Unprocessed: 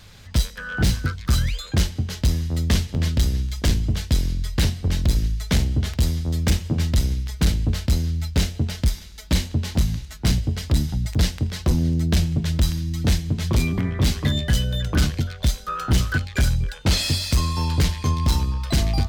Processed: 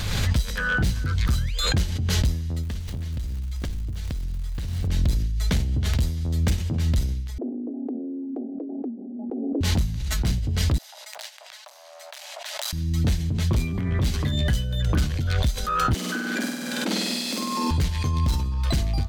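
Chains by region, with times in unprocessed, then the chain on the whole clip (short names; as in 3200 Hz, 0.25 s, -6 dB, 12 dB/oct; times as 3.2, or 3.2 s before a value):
2.62–4.86 low shelf 61 Hz +10 dB + compressor 10:1, threshold -22 dBFS + crackle 360/s -32 dBFS
7.38–9.61 steep low-pass 610 Hz 96 dB/oct + compressor 5:1, threshold -22 dBFS + frequency shift +190 Hz
10.78–12.73 hard clip -19 dBFS + Chebyshev high-pass 590 Hz, order 6 + upward expander, over -47 dBFS
15.94–17.71 steep high-pass 200 Hz 96 dB/oct + low shelf 400 Hz +8.5 dB + flutter echo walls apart 8.5 m, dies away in 1.3 s
whole clip: low shelf 140 Hz +4.5 dB; notch 5200 Hz, Q 20; backwards sustainer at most 26 dB/s; gain -7.5 dB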